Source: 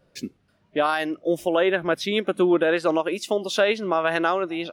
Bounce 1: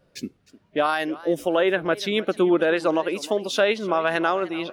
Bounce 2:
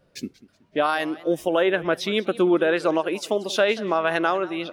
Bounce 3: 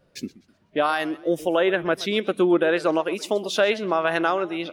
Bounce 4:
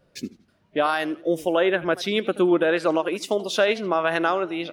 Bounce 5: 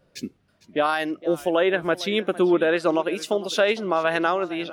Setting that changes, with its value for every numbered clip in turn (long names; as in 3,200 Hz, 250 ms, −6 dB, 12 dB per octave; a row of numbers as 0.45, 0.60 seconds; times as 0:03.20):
feedback echo with a swinging delay time, delay time: 304, 187, 126, 82, 458 milliseconds